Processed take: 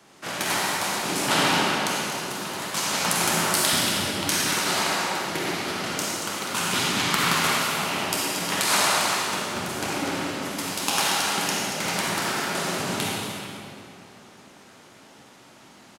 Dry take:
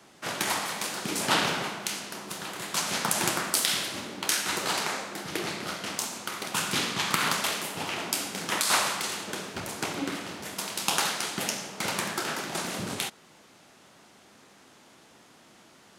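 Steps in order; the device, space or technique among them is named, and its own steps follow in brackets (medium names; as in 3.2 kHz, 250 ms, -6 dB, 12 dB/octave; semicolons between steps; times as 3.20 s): cave (delay 232 ms -10 dB; reverberation RT60 2.8 s, pre-delay 42 ms, DRR -3.5 dB); 3.73–4.54 s: bass shelf 230 Hz +9 dB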